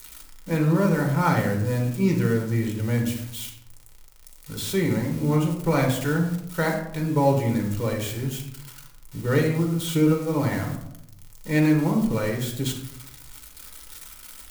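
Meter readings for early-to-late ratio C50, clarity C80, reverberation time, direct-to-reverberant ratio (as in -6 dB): 6.5 dB, 9.5 dB, 0.75 s, 0.5 dB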